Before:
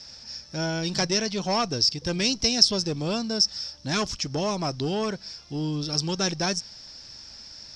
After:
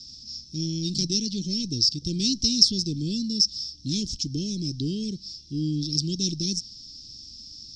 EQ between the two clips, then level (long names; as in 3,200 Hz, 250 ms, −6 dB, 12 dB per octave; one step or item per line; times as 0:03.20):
elliptic band-stop filter 310–2,800 Hz, stop band 80 dB
low-pass filter 7,700 Hz 12 dB per octave
flat-topped bell 1,800 Hz −14.5 dB
+2.5 dB